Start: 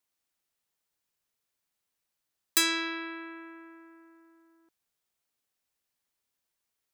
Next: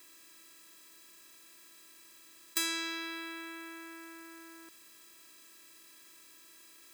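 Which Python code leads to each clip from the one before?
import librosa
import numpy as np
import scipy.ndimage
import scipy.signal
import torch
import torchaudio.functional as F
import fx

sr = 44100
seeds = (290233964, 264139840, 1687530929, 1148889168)

y = fx.bin_compress(x, sr, power=0.4)
y = F.gain(torch.from_numpy(y), -9.0).numpy()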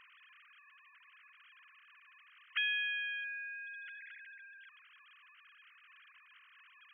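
y = fx.sine_speech(x, sr)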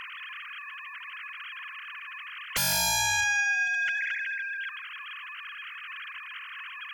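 y = fx.fold_sine(x, sr, drive_db=17, ceiling_db=-23.0)
y = y + 10.0 ** (-14.5 / 20.0) * np.pad(y, (int(160 * sr / 1000.0), 0))[:len(y)]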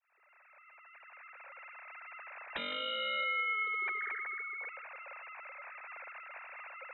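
y = fx.fade_in_head(x, sr, length_s=2.27)
y = fx.freq_invert(y, sr, carrier_hz=3800)
y = F.gain(torch.from_numpy(y), -7.5).numpy()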